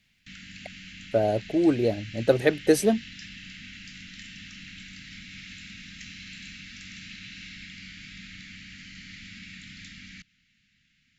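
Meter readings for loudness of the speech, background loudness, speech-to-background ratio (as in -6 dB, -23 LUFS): -24.5 LUFS, -42.0 LUFS, 17.5 dB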